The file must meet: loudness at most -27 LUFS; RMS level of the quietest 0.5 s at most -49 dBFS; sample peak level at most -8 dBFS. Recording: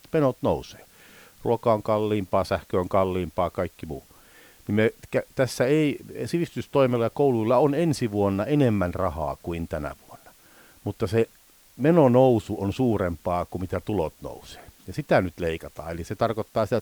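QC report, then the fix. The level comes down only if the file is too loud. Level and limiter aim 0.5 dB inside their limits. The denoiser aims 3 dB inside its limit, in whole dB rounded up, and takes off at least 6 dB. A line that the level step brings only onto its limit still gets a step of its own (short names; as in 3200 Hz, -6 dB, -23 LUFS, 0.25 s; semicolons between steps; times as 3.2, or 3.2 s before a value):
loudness -24.5 LUFS: fail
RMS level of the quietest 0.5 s -56 dBFS: OK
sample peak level -6.5 dBFS: fail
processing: gain -3 dB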